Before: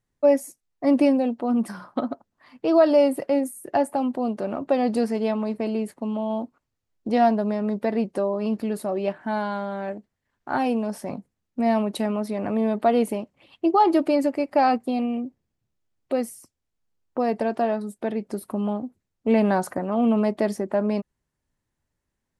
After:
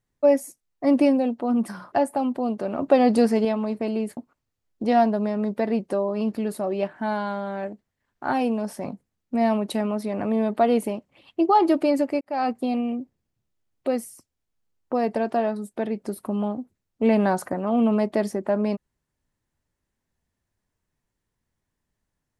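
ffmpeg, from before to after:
-filter_complex "[0:a]asplit=6[a][b][c][d][e][f];[a]atrim=end=1.922[g];[b]atrim=start=3.708:end=4.582[h];[c]atrim=start=4.578:end=5.242,asetpts=PTS-STARTPTS,volume=4.5dB[i];[d]atrim=start=5.238:end=5.962[j];[e]atrim=start=6.418:end=14.46,asetpts=PTS-STARTPTS,afade=t=out:st=8.038:d=0.004:c=hsin[k];[f]atrim=start=14.46,asetpts=PTS-STARTPTS,afade=t=in:d=0.37[l];[g][h]acrossfade=d=0.004:c1=hsin:c2=hsin[m];[m][i]acrossfade=d=0.004:c1=hsin:c2=hsin[n];[n][j]acrossfade=d=0.004:c1=hsin:c2=hsin[o];[k][l]concat=n=2:v=0:a=1[p];[o][p]acrossfade=d=0.004:c1=hsin:c2=hsin"

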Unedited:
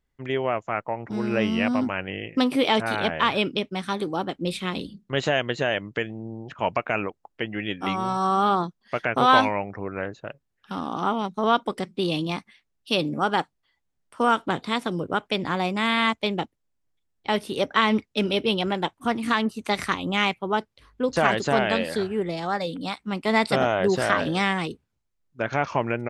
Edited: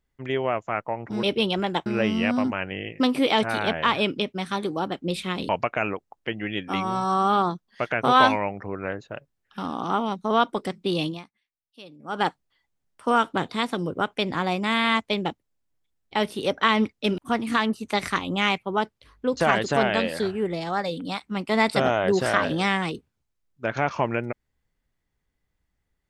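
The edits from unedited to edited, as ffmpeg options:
-filter_complex "[0:a]asplit=7[a][b][c][d][e][f][g];[a]atrim=end=1.232[h];[b]atrim=start=18.308:end=18.942[i];[c]atrim=start=1.228:end=4.862[j];[d]atrim=start=6.618:end=12.44,asetpts=PTS-STARTPTS,afade=t=out:st=5.572:d=0.25:c=qua:silence=0.0841395[k];[e]atrim=start=12.44:end=13.1,asetpts=PTS-STARTPTS,volume=-21.5dB[l];[f]atrim=start=13.1:end=18.312,asetpts=PTS-STARTPTS,afade=t=in:d=0.25:c=qua:silence=0.0841395[m];[g]atrim=start=18.938[n];[h][i]acrossfade=d=0.004:c1=hsin:c2=hsin[o];[o][j]acrossfade=d=0.004:c1=hsin:c2=hsin[p];[k][l][m]concat=n=3:v=0:a=1[q];[p][q]acrossfade=d=0.004:c1=hsin:c2=hsin[r];[r][n]acrossfade=d=0.004:c1=hsin:c2=hsin"

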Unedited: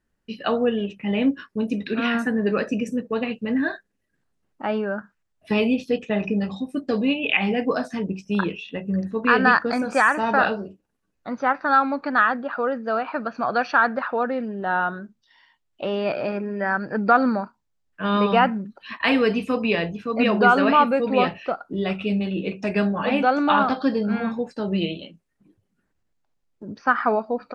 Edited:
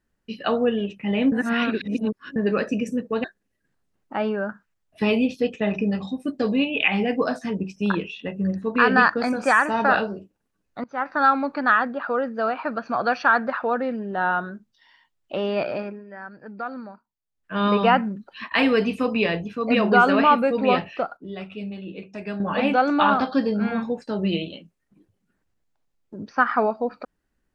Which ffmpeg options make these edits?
-filter_complex "[0:a]asplit=9[a][b][c][d][e][f][g][h][i];[a]atrim=end=1.322[j];[b]atrim=start=1.318:end=2.362,asetpts=PTS-STARTPTS,areverse[k];[c]atrim=start=2.358:end=3.242[l];[d]atrim=start=3.728:end=11.33,asetpts=PTS-STARTPTS,afade=t=out:st=7.598:d=0.004:c=hsin:silence=0.0668344[m];[e]atrim=start=11.33:end=16.53,asetpts=PTS-STARTPTS,afade=t=in:d=0.33:silence=0.0668344,afade=t=out:st=4.82:d=0.38:silence=0.177828[n];[f]atrim=start=16.53:end=17.73,asetpts=PTS-STARTPTS,volume=-15dB[o];[g]atrim=start=17.73:end=21.662,asetpts=PTS-STARTPTS,afade=t=in:d=0.38:silence=0.177828[p];[h]atrim=start=21.658:end=22.892,asetpts=PTS-STARTPTS,volume=-9.5dB[q];[i]atrim=start=22.888[r];[j][k]acrossfade=d=0.004:c1=hsin:c2=hsin[s];[s][l]acrossfade=d=0.004:c1=hsin:c2=hsin[t];[m][n][o][p]concat=n=4:v=0:a=1[u];[t][u]acrossfade=d=0.004:c1=hsin:c2=hsin[v];[v][q]acrossfade=d=0.004:c1=hsin:c2=hsin[w];[w][r]acrossfade=d=0.004:c1=hsin:c2=hsin"

